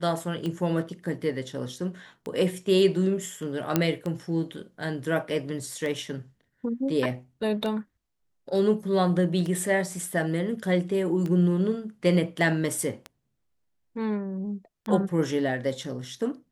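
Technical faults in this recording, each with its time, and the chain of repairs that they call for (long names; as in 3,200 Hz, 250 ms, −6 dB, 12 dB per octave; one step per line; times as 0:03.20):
scratch tick 33 1/3 rpm −20 dBFS
0:03.76: click −7 dBFS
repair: click removal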